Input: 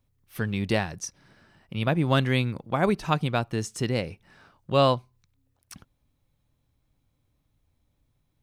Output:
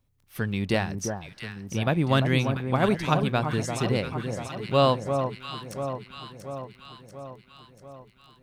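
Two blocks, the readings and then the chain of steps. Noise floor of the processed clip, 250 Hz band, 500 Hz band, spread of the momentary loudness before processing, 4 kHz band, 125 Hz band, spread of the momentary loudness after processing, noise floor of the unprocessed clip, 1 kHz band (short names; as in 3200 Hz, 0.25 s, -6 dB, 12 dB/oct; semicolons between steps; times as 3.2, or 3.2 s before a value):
-59 dBFS, +1.5 dB, +1.5 dB, 14 LU, +1.0 dB, +1.5 dB, 20 LU, -73 dBFS, +1.5 dB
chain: echo with dull and thin repeats by turns 0.344 s, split 1200 Hz, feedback 76%, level -6 dB; crackle 13/s -46 dBFS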